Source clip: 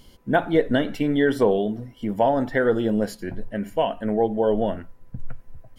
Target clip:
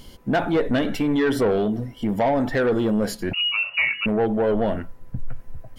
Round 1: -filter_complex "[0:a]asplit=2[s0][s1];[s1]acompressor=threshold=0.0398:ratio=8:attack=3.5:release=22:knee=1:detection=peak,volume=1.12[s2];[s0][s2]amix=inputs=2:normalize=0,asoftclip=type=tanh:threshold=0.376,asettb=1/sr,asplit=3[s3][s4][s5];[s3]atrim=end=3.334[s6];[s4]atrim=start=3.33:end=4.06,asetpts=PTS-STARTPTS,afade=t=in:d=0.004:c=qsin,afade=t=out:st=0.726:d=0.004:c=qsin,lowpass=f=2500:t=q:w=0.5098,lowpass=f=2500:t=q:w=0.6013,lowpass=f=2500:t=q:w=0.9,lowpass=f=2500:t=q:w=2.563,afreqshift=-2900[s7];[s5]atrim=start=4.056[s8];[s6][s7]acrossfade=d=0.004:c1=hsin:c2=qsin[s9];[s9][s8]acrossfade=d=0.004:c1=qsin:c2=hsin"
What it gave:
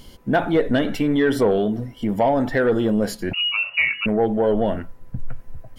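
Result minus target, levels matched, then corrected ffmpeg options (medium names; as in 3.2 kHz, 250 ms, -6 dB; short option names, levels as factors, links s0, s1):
saturation: distortion -8 dB
-filter_complex "[0:a]asplit=2[s0][s1];[s1]acompressor=threshold=0.0398:ratio=8:attack=3.5:release=22:knee=1:detection=peak,volume=1.12[s2];[s0][s2]amix=inputs=2:normalize=0,asoftclip=type=tanh:threshold=0.188,asettb=1/sr,asplit=3[s3][s4][s5];[s3]atrim=end=3.334[s6];[s4]atrim=start=3.33:end=4.06,asetpts=PTS-STARTPTS,afade=t=in:d=0.004:c=qsin,afade=t=out:st=0.726:d=0.004:c=qsin,lowpass=f=2500:t=q:w=0.5098,lowpass=f=2500:t=q:w=0.6013,lowpass=f=2500:t=q:w=0.9,lowpass=f=2500:t=q:w=2.563,afreqshift=-2900[s7];[s5]atrim=start=4.056[s8];[s6][s7]acrossfade=d=0.004:c1=hsin:c2=qsin[s9];[s9][s8]acrossfade=d=0.004:c1=qsin:c2=hsin"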